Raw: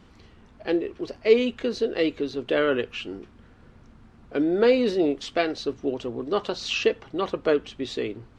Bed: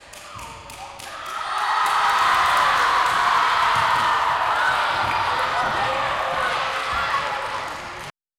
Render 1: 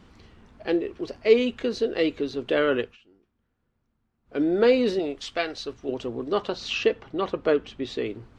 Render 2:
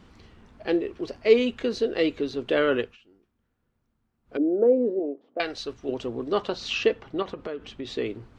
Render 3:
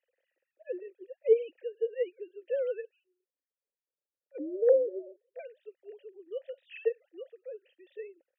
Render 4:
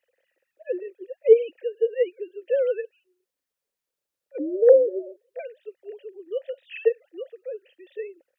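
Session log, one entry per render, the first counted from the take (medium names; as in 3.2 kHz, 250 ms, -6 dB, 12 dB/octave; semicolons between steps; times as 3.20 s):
2.80–4.42 s: dip -23.5 dB, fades 0.17 s; 4.99–5.89 s: peaking EQ 250 Hz -8 dB 2.6 oct; 6.42–8.06 s: treble shelf 6.6 kHz -10 dB
4.37–5.40 s: Chebyshev band-pass 260–610 Hz; 7.22–7.88 s: compression 10:1, threshold -29 dBFS
formants replaced by sine waves; vowel filter e
trim +8.5 dB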